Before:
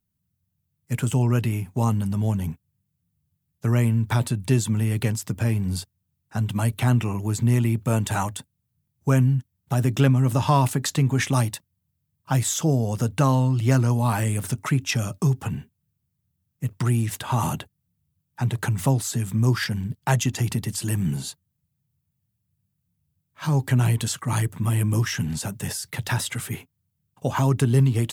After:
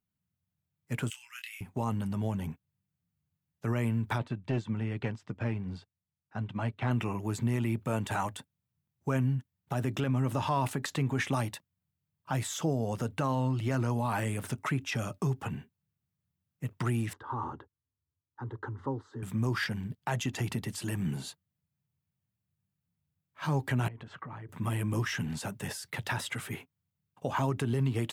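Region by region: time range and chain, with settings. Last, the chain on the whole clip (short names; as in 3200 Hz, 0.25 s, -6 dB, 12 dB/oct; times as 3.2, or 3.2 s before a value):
1.1–1.61 inverse Chebyshev high-pass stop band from 580 Hz, stop band 60 dB + doubler 25 ms -6 dB
4.18–6.91 overloaded stage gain 14.5 dB + air absorption 150 m + upward expander, over -33 dBFS
17.13–19.23 tape spacing loss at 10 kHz 41 dB + fixed phaser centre 660 Hz, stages 6
23.88–24.49 LPF 1700 Hz + compressor 16:1, threshold -32 dBFS
whole clip: low shelf 170 Hz -9 dB; limiter -17.5 dBFS; tone controls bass -1 dB, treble -9 dB; gain -2.5 dB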